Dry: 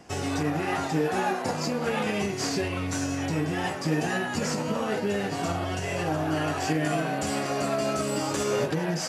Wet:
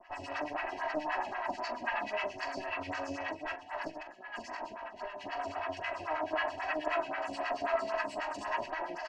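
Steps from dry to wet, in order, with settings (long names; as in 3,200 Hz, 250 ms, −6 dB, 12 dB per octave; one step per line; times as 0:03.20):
lower of the sound and its delayed copy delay 1.1 ms
Chebyshev low-pass filter 6,500 Hz, order 2
three-way crossover with the lows and the highs turned down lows −17 dB, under 500 Hz, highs −22 dB, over 3,900 Hz
notch filter 3,600 Hz, Q 5.1
comb filter 3.1 ms, depth 81%
0:02.77–0:05.21: compressor whose output falls as the input rises −37 dBFS, ratio −0.5
two-band tremolo in antiphase 9.3 Hz, depth 100%, crossover 940 Hz
multi-tap delay 43/129 ms −10.5/−19 dB
phaser with staggered stages 3.8 Hz
level +4 dB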